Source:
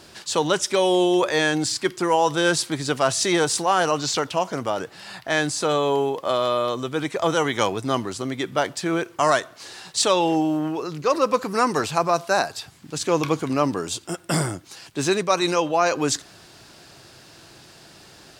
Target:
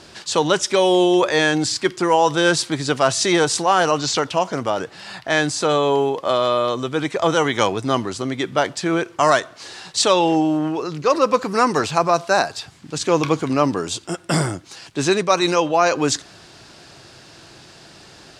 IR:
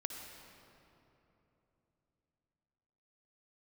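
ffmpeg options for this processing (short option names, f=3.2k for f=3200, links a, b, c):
-af "lowpass=8.3k,volume=3.5dB"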